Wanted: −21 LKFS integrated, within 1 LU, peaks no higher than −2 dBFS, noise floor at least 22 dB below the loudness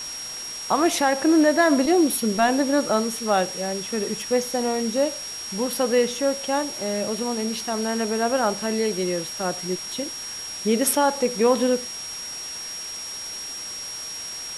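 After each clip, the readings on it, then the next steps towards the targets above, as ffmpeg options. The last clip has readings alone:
interfering tone 5,600 Hz; level of the tone −32 dBFS; background noise floor −34 dBFS; target noise floor −46 dBFS; integrated loudness −23.5 LKFS; sample peak −7.5 dBFS; target loudness −21.0 LKFS
→ -af "bandreject=frequency=5600:width=30"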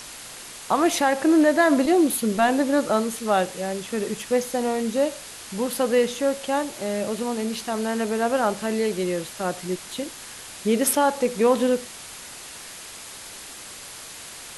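interfering tone none found; background noise floor −40 dBFS; target noise floor −45 dBFS
→ -af "afftdn=noise_reduction=6:noise_floor=-40"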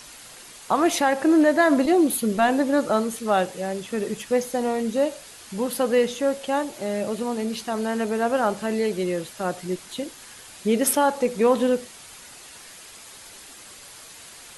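background noise floor −45 dBFS; integrated loudness −23.0 LKFS; sample peak −8.0 dBFS; target loudness −21.0 LKFS
→ -af "volume=2dB"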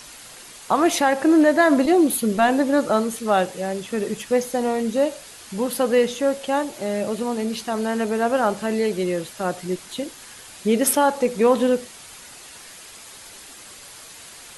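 integrated loudness −21.0 LKFS; sample peak −6.0 dBFS; background noise floor −43 dBFS

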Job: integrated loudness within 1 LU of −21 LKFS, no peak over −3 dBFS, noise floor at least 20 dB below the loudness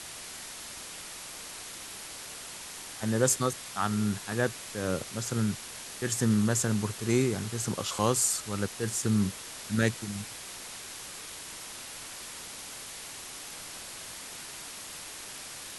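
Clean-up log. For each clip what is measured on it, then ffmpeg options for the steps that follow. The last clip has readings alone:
background noise floor −43 dBFS; target noise floor −52 dBFS; integrated loudness −32.0 LKFS; sample peak −10.0 dBFS; target loudness −21.0 LKFS
→ -af "afftdn=noise_reduction=9:noise_floor=-43"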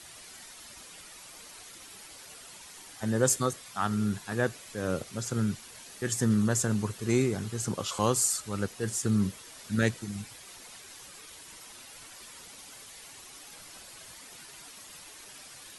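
background noise floor −49 dBFS; target noise floor −50 dBFS
→ -af "afftdn=noise_reduction=6:noise_floor=-49"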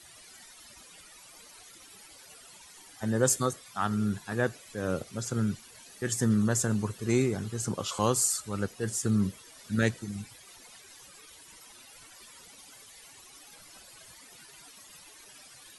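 background noise floor −53 dBFS; integrated loudness −29.5 LKFS; sample peak −10.5 dBFS; target loudness −21.0 LKFS
→ -af "volume=8.5dB,alimiter=limit=-3dB:level=0:latency=1"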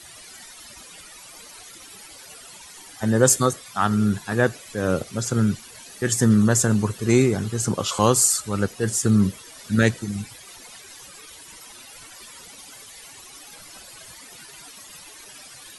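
integrated loudness −21.0 LKFS; sample peak −3.0 dBFS; background noise floor −44 dBFS

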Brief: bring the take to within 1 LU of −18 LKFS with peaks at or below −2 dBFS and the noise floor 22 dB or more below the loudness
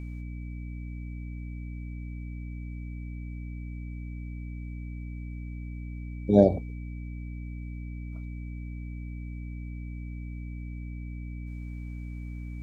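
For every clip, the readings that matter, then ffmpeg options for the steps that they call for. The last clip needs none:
mains hum 60 Hz; hum harmonics up to 300 Hz; level of the hum −35 dBFS; interfering tone 2,300 Hz; level of the tone −54 dBFS; integrated loudness −34.5 LKFS; sample peak −4.5 dBFS; target loudness −18.0 LKFS
→ -af "bandreject=frequency=60:width_type=h:width=6,bandreject=frequency=120:width_type=h:width=6,bandreject=frequency=180:width_type=h:width=6,bandreject=frequency=240:width_type=h:width=6,bandreject=frequency=300:width_type=h:width=6"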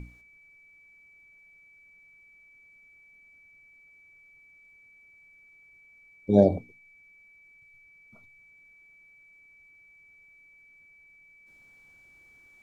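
mains hum none found; interfering tone 2,300 Hz; level of the tone −54 dBFS
→ -af "bandreject=frequency=2300:width=30"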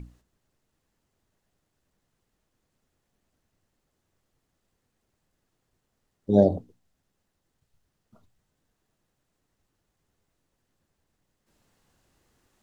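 interfering tone none found; integrated loudness −23.0 LKFS; sample peak −4.5 dBFS; target loudness −18.0 LKFS
→ -af "volume=5dB,alimiter=limit=-2dB:level=0:latency=1"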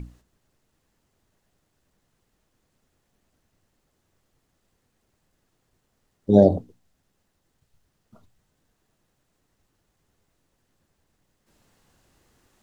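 integrated loudness −18.5 LKFS; sample peak −2.0 dBFS; background noise floor −74 dBFS

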